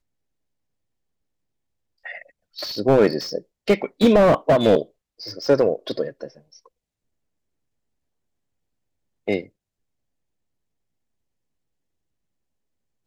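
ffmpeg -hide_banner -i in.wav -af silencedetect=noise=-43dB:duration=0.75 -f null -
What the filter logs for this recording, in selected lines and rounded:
silence_start: 0.00
silence_end: 2.05 | silence_duration: 2.05
silence_start: 6.66
silence_end: 9.28 | silence_duration: 2.61
silence_start: 9.47
silence_end: 13.07 | silence_duration: 3.60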